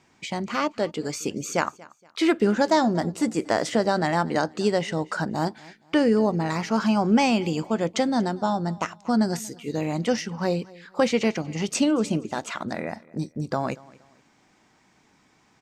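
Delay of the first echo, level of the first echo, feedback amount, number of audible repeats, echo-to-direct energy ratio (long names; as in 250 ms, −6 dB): 235 ms, −22.5 dB, 32%, 2, −22.0 dB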